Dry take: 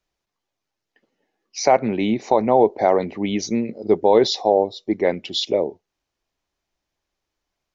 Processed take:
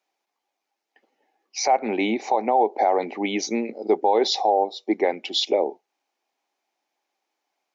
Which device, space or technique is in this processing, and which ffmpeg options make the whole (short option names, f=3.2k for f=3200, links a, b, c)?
laptop speaker: -af "highpass=f=260:w=0.5412,highpass=f=260:w=1.3066,equalizer=f=800:t=o:w=0.35:g=11,equalizer=f=2.3k:t=o:w=0.31:g=5,alimiter=limit=-9.5dB:level=0:latency=1:release=156"